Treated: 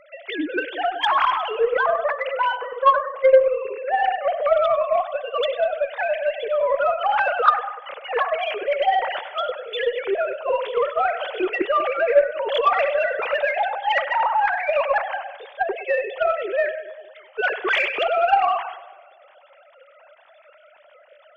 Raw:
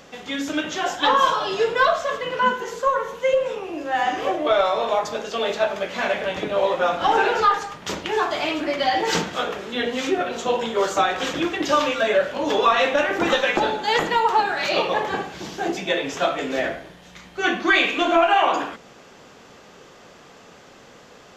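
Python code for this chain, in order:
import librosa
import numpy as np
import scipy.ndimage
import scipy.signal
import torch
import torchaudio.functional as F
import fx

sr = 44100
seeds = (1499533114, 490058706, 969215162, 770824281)

p1 = fx.sine_speech(x, sr)
p2 = fx.over_compress(p1, sr, threshold_db=-23.0, ratio=-0.5)
p3 = p1 + (p2 * 10.0 ** (2.0 / 20.0))
p4 = fx.echo_split(p3, sr, split_hz=590.0, low_ms=188, high_ms=98, feedback_pct=52, wet_db=-13.5)
p5 = fx.cheby_harmonics(p4, sr, harmonics=(3, 6), levels_db=(-19, -43), full_scale_db=-0.5)
y = p5 * 10.0 ** (-1.0 / 20.0)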